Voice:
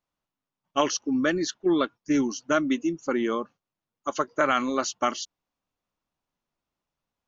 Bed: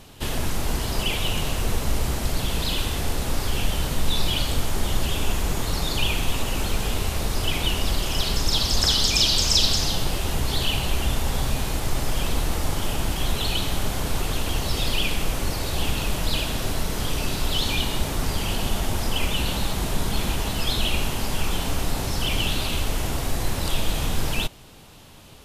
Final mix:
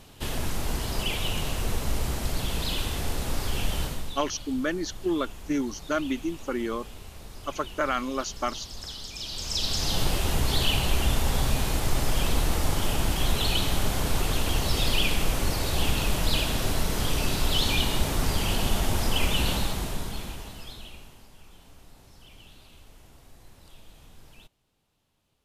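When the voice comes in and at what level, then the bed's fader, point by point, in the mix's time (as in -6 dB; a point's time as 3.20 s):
3.40 s, -4.0 dB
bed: 3.83 s -4 dB
4.23 s -18.5 dB
9.16 s -18.5 dB
10.01 s -0.5 dB
19.52 s -0.5 dB
21.32 s -27 dB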